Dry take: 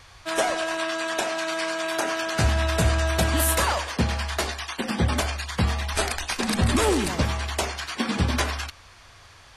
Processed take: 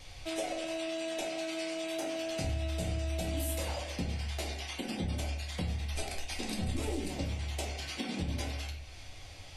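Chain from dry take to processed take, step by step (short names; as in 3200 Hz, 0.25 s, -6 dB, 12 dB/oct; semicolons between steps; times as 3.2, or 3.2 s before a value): band shelf 1300 Hz -10.5 dB 1.1 oct; reverb RT60 0.50 s, pre-delay 4 ms, DRR -1.5 dB; compressor 2.5:1, threshold -36 dBFS, peak gain reduction 16.5 dB; gain -3 dB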